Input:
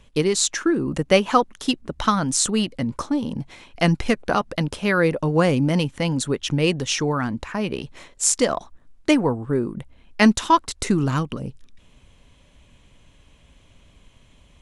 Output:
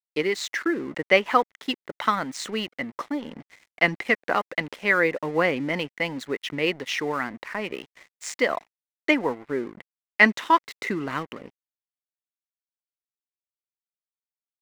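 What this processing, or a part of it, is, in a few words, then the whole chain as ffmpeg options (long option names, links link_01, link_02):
pocket radio on a weak battery: -af "highpass=310,lowpass=3200,aeval=exprs='sgn(val(0))*max(abs(val(0))-0.00631,0)':channel_layout=same,equalizer=frequency=2000:width_type=o:width=0.36:gain=11.5,highshelf=frequency=5200:gain=4.5,volume=-2.5dB"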